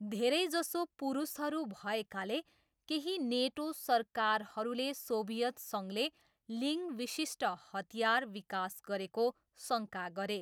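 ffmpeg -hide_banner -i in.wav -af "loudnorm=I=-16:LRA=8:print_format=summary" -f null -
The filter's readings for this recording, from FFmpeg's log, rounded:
Input Integrated:    -36.5 LUFS
Input True Peak:     -18.3 dBTP
Input LRA:             1.5 LU
Input Threshold:     -46.7 LUFS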